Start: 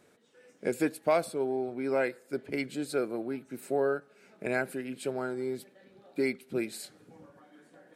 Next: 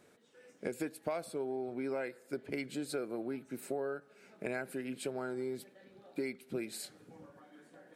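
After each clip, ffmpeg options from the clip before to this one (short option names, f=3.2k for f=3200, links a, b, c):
-af "acompressor=threshold=-33dB:ratio=5,volume=-1dB"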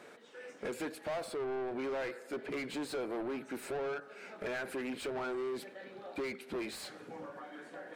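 -filter_complex "[0:a]asplit=2[a][b];[b]highpass=f=720:p=1,volume=29dB,asoftclip=type=tanh:threshold=-21.5dB[c];[a][c]amix=inputs=2:normalize=0,lowpass=f=2.1k:p=1,volume=-6dB,volume=-7.5dB"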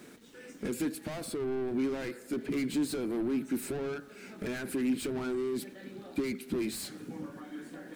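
-af "crystalizer=i=2.5:c=0,aeval=exprs='val(0)*gte(abs(val(0)),0.00141)':c=same,lowshelf=f=390:t=q:w=1.5:g=11.5,volume=-2.5dB"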